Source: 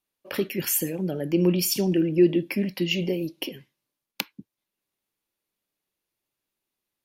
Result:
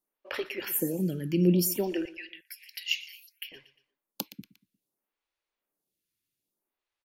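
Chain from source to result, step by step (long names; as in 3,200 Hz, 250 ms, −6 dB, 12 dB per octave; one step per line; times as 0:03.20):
0:02.05–0:03.52: linear-phase brick-wall high-pass 1,400 Hz
on a send: repeating echo 118 ms, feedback 37%, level −17.5 dB
on the sum: phaser with staggered stages 0.61 Hz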